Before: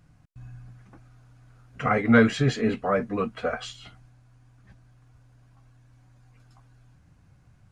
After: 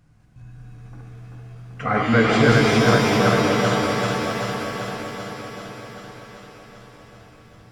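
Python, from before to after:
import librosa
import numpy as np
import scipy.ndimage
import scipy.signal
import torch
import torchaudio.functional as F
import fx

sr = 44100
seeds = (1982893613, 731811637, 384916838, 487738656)

y = fx.reverse_delay_fb(x, sr, ms=194, feedback_pct=83, wet_db=-1.0)
y = fx.rev_shimmer(y, sr, seeds[0], rt60_s=1.5, semitones=7, shimmer_db=-2, drr_db=5.0)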